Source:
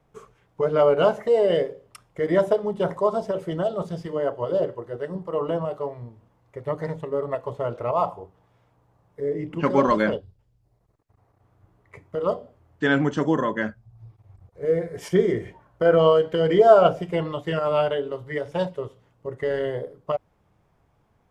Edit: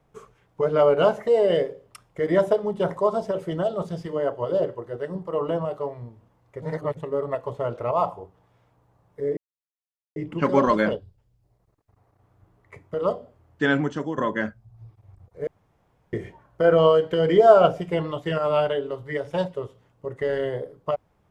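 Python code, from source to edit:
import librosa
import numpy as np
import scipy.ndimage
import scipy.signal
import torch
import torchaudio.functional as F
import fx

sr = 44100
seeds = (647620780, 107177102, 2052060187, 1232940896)

y = fx.edit(x, sr, fx.reverse_span(start_s=6.62, length_s=0.35),
    fx.insert_silence(at_s=9.37, length_s=0.79),
    fx.fade_out_to(start_s=12.86, length_s=0.53, floor_db=-11.0),
    fx.room_tone_fill(start_s=14.68, length_s=0.66), tone=tone)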